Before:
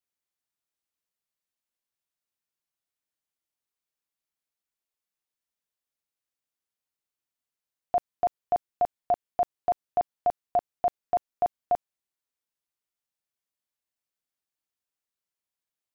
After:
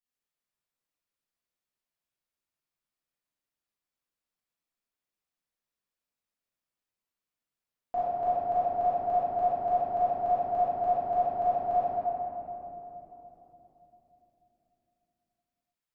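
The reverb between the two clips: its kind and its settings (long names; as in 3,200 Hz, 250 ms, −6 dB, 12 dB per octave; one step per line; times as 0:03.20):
rectangular room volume 220 cubic metres, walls hard, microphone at 1.9 metres
level −11 dB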